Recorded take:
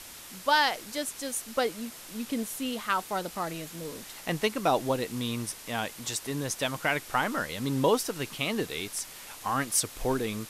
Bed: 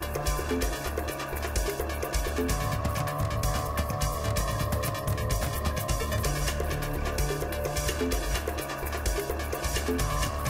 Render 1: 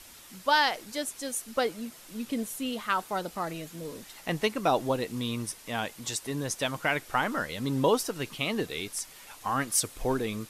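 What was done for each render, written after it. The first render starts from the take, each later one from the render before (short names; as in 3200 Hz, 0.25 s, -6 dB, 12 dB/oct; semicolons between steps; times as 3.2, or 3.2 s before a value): denoiser 6 dB, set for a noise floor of -46 dBFS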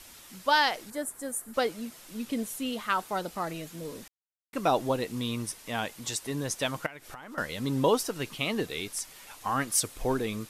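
0.9–1.54 band shelf 3800 Hz -13 dB; 4.08–4.53 mute; 6.86–7.38 compressor 20:1, threshold -39 dBFS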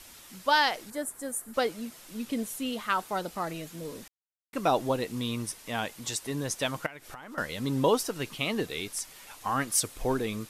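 nothing audible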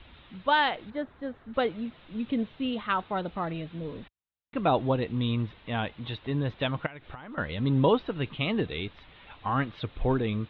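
Chebyshev low-pass 3800 Hz, order 6; bell 63 Hz +13 dB 2.9 oct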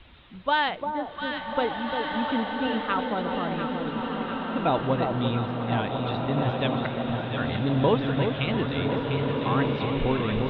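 echo with dull and thin repeats by turns 0.349 s, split 1000 Hz, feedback 82%, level -5 dB; bloom reverb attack 1.7 s, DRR 2.5 dB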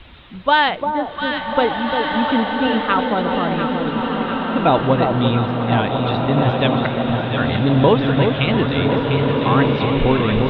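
gain +9 dB; limiter -3 dBFS, peak gain reduction 3 dB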